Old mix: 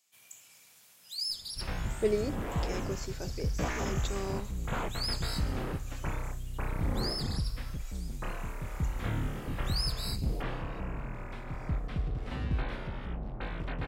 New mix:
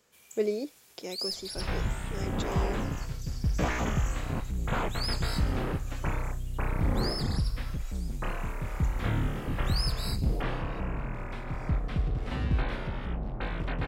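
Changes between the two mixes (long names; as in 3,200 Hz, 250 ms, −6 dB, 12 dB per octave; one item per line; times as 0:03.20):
speech: entry −1.65 s
second sound +4.0 dB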